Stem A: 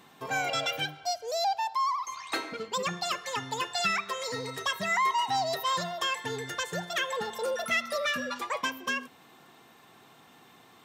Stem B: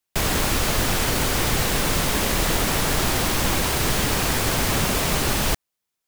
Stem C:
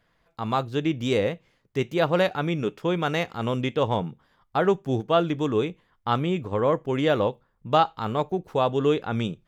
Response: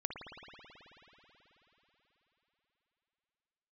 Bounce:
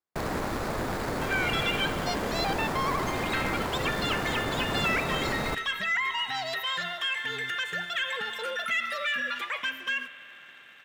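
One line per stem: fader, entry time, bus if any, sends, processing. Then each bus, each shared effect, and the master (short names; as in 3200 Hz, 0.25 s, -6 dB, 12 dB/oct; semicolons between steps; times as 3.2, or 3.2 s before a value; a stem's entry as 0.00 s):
-9.5 dB, 1.00 s, bus A, send -14.5 dB, band shelf 2200 Hz +15.5 dB
-4.5 dB, 0.00 s, no bus, send -19.5 dB, median filter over 15 samples; low shelf 110 Hz -11.5 dB
off
bus A: 0.0 dB, sample leveller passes 1; limiter -24.5 dBFS, peak gain reduction 12 dB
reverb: on, RT60 4.2 s, pre-delay 54 ms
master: dry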